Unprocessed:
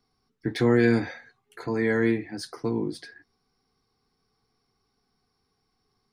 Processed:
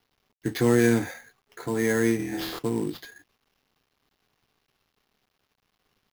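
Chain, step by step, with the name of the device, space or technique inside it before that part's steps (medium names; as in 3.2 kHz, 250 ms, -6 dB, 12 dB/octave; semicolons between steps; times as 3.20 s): 2.17–2.59 s: flutter echo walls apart 4.2 m, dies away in 0.97 s; early companding sampler (sample-rate reducer 8.3 kHz, jitter 0%; companded quantiser 6-bit)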